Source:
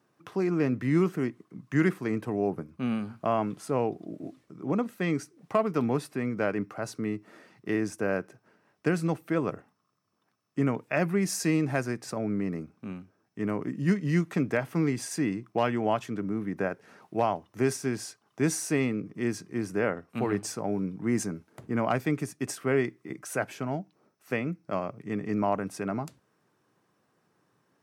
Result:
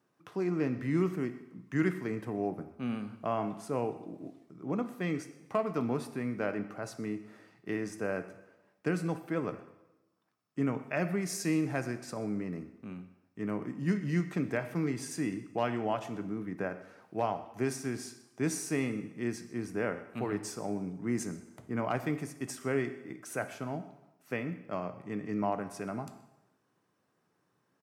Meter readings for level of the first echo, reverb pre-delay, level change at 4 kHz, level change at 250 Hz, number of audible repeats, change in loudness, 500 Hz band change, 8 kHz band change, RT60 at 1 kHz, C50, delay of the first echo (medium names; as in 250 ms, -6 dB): -21.0 dB, 7 ms, -5.0 dB, -5.0 dB, 1, -5.0 dB, -5.0 dB, -5.0 dB, 0.95 s, 11.5 dB, 126 ms